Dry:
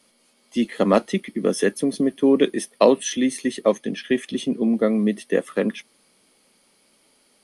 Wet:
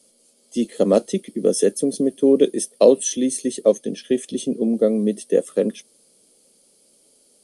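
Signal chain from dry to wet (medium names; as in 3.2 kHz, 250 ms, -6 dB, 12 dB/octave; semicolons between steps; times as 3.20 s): graphic EQ 500/1000/2000/8000 Hz +8/-9/-10/+11 dB; trim -1.5 dB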